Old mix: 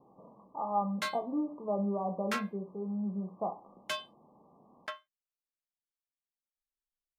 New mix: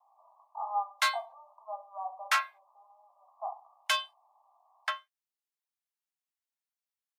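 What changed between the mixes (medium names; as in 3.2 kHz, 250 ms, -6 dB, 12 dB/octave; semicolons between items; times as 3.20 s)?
background +8.5 dB; master: add steep high-pass 680 Hz 72 dB/octave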